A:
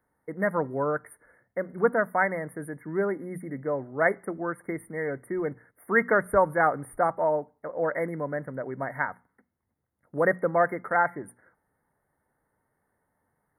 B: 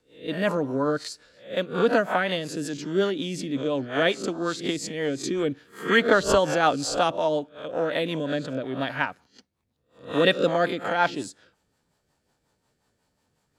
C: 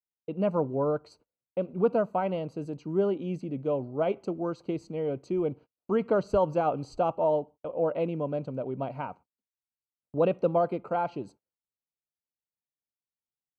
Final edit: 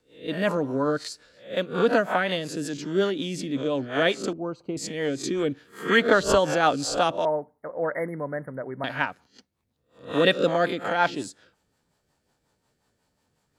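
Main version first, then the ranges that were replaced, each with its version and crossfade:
B
4.33–4.77 s: from C
7.25–8.84 s: from A

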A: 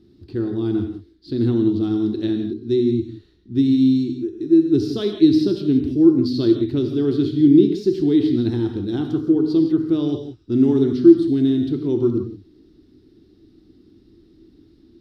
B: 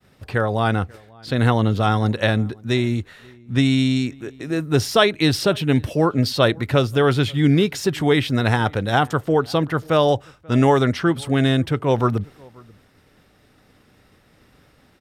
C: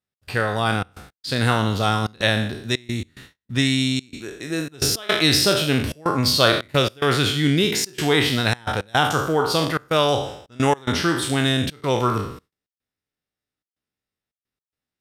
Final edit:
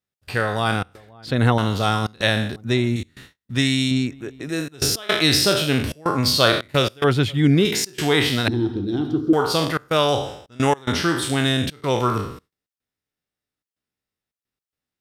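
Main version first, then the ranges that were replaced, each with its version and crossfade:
C
0.95–1.58 s: from B
2.56–2.96 s: from B
3.91–4.49 s: from B
7.04–7.65 s: from B
8.48–9.33 s: from A

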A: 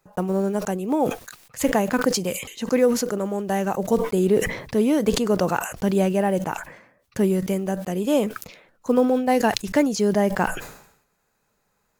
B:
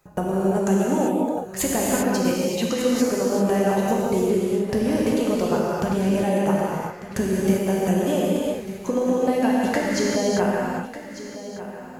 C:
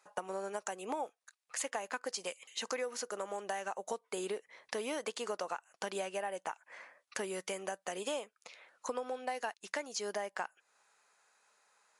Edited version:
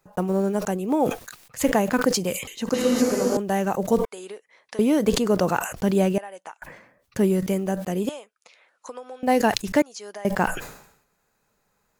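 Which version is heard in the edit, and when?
A
2.74–3.37 s: from B
4.05–4.79 s: from C
6.18–6.62 s: from C
8.09–9.23 s: from C
9.82–10.25 s: from C

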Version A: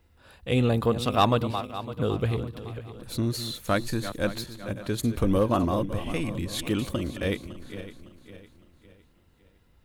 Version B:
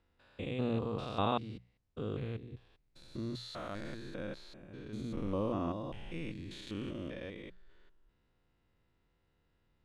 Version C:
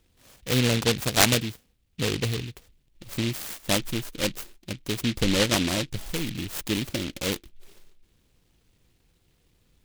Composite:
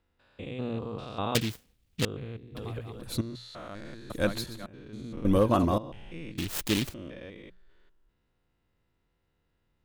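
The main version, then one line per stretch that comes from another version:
B
1.35–2.05 s: from C
2.55–3.21 s: from A
4.10–4.66 s: from A
5.25–5.78 s: from A
6.38–6.94 s: from C

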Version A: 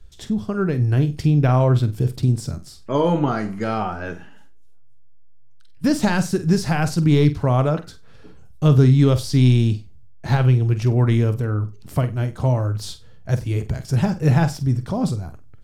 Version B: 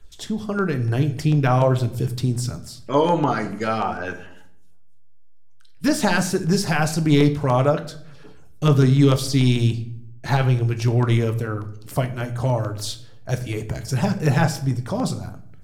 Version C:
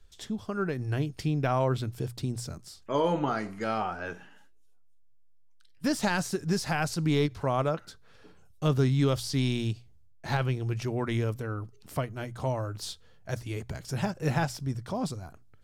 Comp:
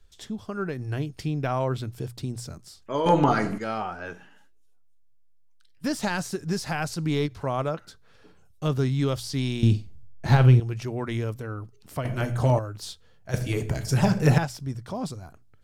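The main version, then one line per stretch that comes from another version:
C
3.06–3.58 s: from B
9.63–10.60 s: from A
12.05–12.59 s: from B
13.34–14.38 s: from B

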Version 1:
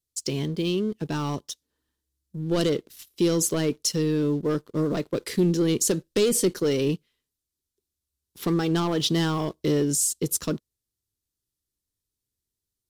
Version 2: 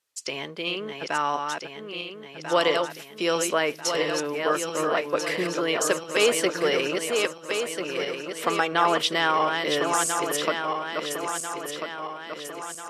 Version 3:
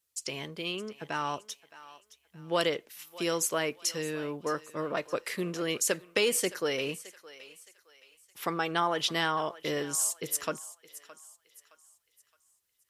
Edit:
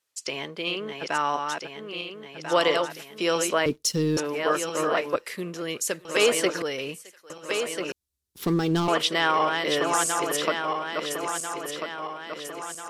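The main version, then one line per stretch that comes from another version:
2
3.66–4.17 s: from 1
5.16–6.05 s: from 3
6.62–7.30 s: from 3
7.92–8.88 s: from 1

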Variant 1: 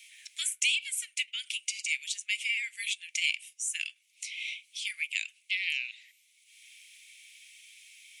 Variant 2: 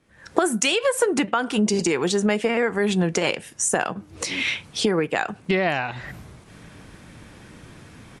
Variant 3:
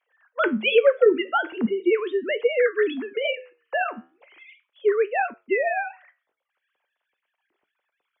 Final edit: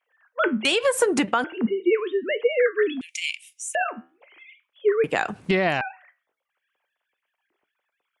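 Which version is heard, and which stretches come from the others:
3
0.65–1.44 s: from 2
3.01–3.75 s: from 1
5.04–5.81 s: from 2

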